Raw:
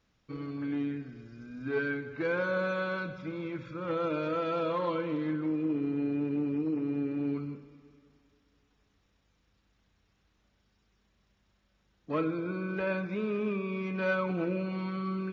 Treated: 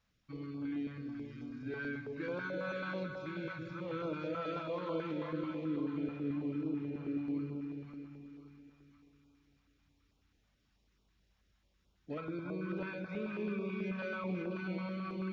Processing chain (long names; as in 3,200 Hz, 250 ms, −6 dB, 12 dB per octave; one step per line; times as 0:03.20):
brickwall limiter −25.5 dBFS, peak gain reduction 6.5 dB
echo with a time of its own for lows and highs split 990 Hz, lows 342 ms, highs 526 ms, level −5 dB
notch on a step sequencer 9.2 Hz 350–1,800 Hz
level −4.5 dB